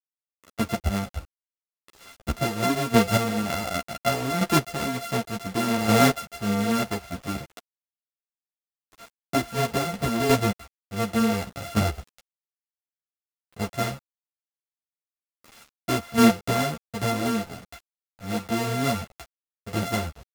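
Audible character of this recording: a buzz of ramps at a fixed pitch in blocks of 64 samples; chopped level 0.68 Hz, depth 60%, duty 15%; a quantiser's noise floor 8-bit, dither none; a shimmering, thickened sound

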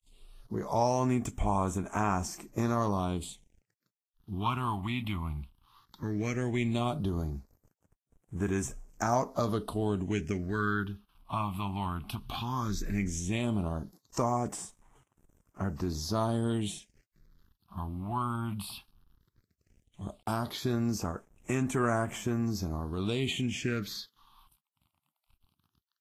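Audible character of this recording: a quantiser's noise floor 10-bit, dither none; phasing stages 6, 0.15 Hz, lowest notch 440–4400 Hz; Vorbis

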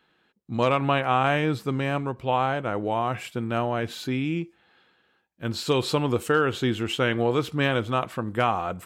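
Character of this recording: noise floor -67 dBFS; spectral tilt -4.5 dB/octave

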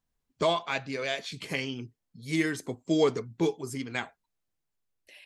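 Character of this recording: tremolo saw down 0.76 Hz, depth 40%

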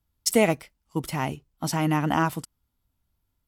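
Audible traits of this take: noise floor -78 dBFS; spectral tilt -5.0 dB/octave

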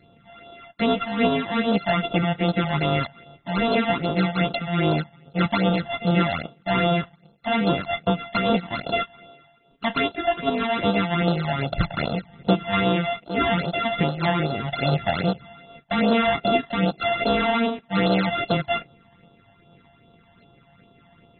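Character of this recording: a buzz of ramps at a fixed pitch in blocks of 64 samples; phasing stages 12, 2.5 Hz, lowest notch 390–2100 Hz; AAC

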